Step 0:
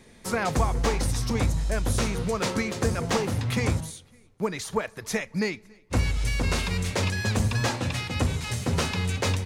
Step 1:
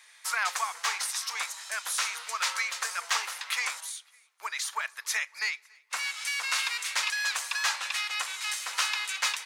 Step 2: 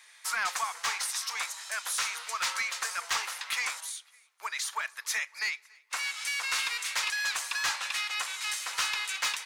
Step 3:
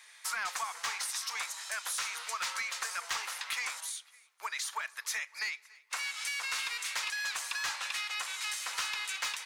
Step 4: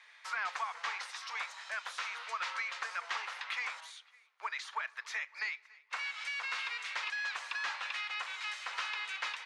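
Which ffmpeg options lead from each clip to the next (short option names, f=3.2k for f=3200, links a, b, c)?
-af "highpass=f=1.1k:w=0.5412,highpass=f=1.1k:w=1.3066,volume=3dB"
-af "asoftclip=type=tanh:threshold=-21dB"
-af "acompressor=threshold=-34dB:ratio=2.5"
-af "highpass=340,lowpass=3.1k"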